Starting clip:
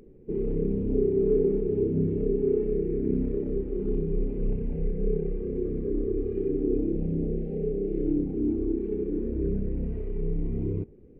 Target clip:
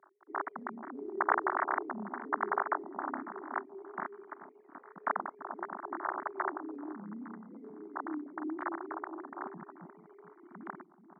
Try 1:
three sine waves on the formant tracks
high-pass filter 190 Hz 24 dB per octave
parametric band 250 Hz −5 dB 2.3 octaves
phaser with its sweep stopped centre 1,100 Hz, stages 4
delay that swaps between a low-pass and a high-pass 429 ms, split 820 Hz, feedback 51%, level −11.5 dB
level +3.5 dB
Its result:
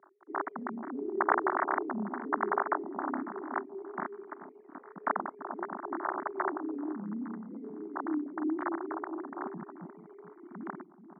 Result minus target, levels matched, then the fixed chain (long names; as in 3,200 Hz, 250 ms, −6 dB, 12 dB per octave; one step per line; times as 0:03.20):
250 Hz band +4.0 dB
three sine waves on the formant tracks
high-pass filter 190 Hz 24 dB per octave
parametric band 250 Hz −12 dB 2.3 octaves
phaser with its sweep stopped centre 1,100 Hz, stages 4
delay that swaps between a low-pass and a high-pass 429 ms, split 820 Hz, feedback 51%, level −11.5 dB
level +3.5 dB